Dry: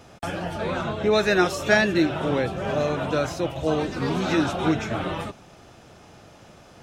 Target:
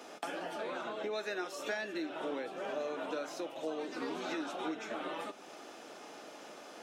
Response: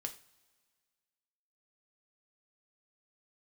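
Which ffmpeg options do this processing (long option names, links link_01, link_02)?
-filter_complex "[0:a]highpass=frequency=270:width=0.5412,highpass=frequency=270:width=1.3066,acompressor=threshold=-39dB:ratio=4,asplit=2[link_01][link_02];[1:a]atrim=start_sample=2205[link_03];[link_02][link_03]afir=irnorm=-1:irlink=0,volume=-1dB[link_04];[link_01][link_04]amix=inputs=2:normalize=0,volume=-4dB"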